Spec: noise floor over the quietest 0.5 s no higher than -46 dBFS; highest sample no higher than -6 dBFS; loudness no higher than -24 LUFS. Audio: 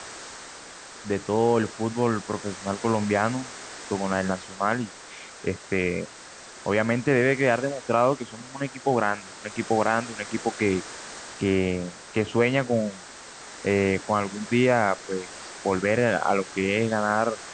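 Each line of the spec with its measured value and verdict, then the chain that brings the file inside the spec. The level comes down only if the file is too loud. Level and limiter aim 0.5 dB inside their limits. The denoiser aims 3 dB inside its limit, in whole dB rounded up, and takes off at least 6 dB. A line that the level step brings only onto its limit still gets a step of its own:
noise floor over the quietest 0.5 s -44 dBFS: fail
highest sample -7.0 dBFS: pass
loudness -25.5 LUFS: pass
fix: noise reduction 6 dB, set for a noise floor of -44 dBFS

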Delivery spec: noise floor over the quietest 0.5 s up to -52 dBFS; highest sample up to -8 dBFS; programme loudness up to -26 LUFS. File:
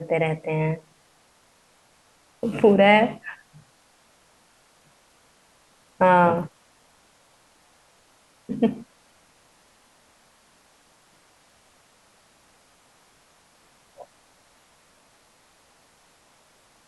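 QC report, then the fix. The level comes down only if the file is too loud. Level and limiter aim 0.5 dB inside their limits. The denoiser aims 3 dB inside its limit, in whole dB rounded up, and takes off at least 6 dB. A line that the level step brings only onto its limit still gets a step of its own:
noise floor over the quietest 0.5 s -60 dBFS: pass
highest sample -5.0 dBFS: fail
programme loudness -21.0 LUFS: fail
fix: trim -5.5 dB

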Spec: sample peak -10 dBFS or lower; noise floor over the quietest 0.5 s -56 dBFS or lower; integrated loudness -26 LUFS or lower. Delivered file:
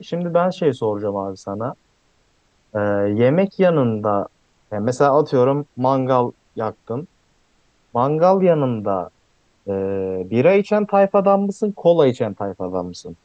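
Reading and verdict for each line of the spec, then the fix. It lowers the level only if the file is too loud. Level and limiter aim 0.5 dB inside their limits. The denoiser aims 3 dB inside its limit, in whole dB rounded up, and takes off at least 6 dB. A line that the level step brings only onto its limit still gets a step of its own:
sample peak -2.5 dBFS: fail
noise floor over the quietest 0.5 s -61 dBFS: pass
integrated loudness -19.0 LUFS: fail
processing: trim -7.5 dB; peak limiter -10.5 dBFS

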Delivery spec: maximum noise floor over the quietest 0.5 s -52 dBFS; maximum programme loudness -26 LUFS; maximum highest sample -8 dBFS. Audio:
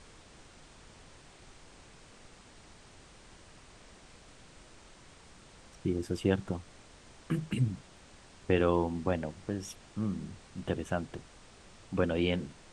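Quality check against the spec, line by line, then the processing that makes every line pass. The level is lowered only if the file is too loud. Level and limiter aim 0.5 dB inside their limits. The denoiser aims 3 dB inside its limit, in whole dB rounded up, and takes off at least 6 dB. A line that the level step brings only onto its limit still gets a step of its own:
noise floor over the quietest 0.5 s -55 dBFS: pass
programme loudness -33.5 LUFS: pass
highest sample -13.5 dBFS: pass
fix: none needed

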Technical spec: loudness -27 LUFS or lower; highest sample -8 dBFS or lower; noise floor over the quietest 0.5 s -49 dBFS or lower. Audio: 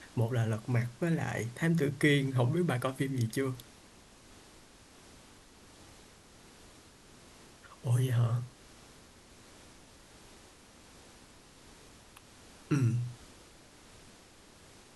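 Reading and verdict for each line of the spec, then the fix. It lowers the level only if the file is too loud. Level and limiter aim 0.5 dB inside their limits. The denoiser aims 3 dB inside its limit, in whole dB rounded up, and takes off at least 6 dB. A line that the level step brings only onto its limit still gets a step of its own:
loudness -31.5 LUFS: pass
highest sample -13.5 dBFS: pass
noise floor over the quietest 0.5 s -57 dBFS: pass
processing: none needed

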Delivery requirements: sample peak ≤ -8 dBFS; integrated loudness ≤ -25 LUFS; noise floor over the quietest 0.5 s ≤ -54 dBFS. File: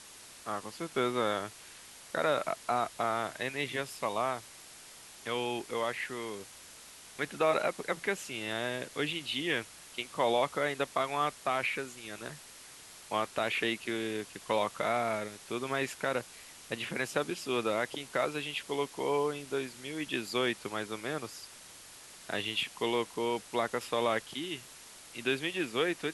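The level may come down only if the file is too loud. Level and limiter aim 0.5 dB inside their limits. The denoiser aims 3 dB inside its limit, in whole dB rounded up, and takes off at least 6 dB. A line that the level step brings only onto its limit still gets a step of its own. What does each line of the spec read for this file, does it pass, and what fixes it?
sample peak -14.0 dBFS: pass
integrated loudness -33.5 LUFS: pass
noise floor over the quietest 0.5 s -52 dBFS: fail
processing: noise reduction 6 dB, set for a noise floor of -52 dBFS

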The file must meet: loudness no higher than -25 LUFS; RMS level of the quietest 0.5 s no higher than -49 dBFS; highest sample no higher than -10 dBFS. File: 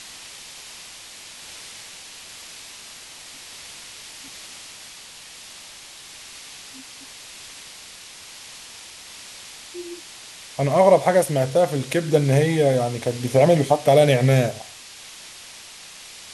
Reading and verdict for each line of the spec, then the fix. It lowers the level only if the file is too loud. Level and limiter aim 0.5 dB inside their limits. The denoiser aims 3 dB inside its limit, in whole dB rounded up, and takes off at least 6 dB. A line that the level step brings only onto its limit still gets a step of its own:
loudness -18.5 LUFS: fail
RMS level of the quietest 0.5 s -42 dBFS: fail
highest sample -4.0 dBFS: fail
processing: noise reduction 6 dB, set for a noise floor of -42 dBFS; trim -7 dB

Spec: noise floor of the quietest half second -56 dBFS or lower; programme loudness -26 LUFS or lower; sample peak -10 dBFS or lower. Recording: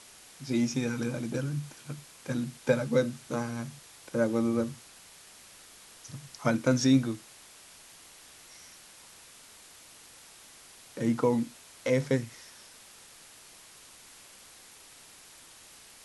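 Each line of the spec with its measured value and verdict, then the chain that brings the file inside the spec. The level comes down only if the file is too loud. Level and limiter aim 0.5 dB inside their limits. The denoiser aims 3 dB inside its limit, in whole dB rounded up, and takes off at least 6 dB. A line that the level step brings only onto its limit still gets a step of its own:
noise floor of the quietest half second -53 dBFS: fail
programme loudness -30.0 LUFS: pass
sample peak -11.0 dBFS: pass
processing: noise reduction 6 dB, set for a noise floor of -53 dBFS

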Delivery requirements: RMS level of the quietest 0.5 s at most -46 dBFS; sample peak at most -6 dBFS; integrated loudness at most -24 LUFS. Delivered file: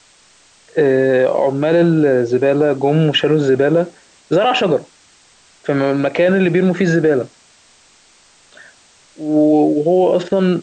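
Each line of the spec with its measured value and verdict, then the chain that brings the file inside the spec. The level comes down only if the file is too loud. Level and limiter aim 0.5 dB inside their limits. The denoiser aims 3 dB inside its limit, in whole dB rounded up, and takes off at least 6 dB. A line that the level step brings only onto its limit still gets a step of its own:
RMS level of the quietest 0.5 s -50 dBFS: pass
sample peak -5.0 dBFS: fail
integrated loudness -15.0 LUFS: fail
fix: trim -9.5 dB

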